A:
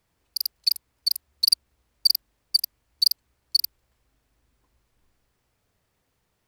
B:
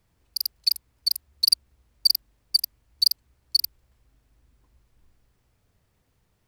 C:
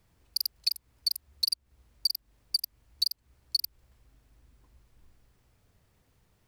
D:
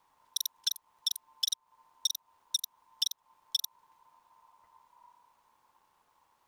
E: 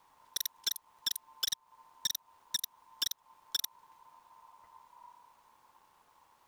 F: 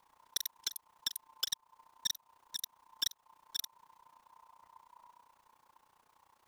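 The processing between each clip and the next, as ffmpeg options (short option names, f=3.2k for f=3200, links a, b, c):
-af "lowshelf=f=210:g=9"
-af "acompressor=threshold=-26dB:ratio=12,volume=1.5dB"
-af "aeval=exprs='val(0)*sin(2*PI*970*n/s)':c=same"
-af "asoftclip=type=tanh:threshold=-29.5dB,volume=4.5dB"
-af "tremolo=f=30:d=0.857,volume=1dB"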